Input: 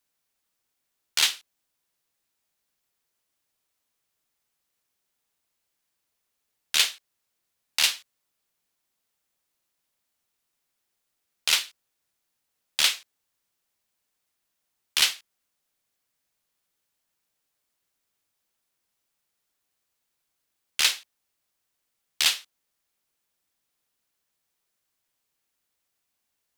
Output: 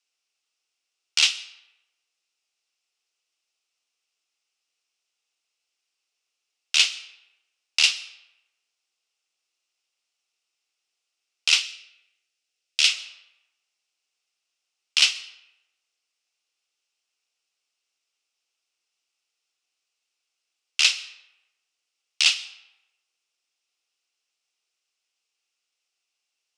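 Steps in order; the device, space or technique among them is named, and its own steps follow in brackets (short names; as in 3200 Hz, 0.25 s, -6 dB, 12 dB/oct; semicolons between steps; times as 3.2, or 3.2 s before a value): digital reverb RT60 0.98 s, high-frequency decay 0.7×, pre-delay 80 ms, DRR 18 dB; 11.65–12.89 bell 990 Hz -12.5 dB 0.61 oct; phone speaker on a table (speaker cabinet 390–8200 Hz, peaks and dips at 410 Hz -4 dB, 590 Hz -8 dB, 960 Hz -8 dB, 1700 Hz -8 dB, 2700 Hz +8 dB, 5300 Hz +6 dB)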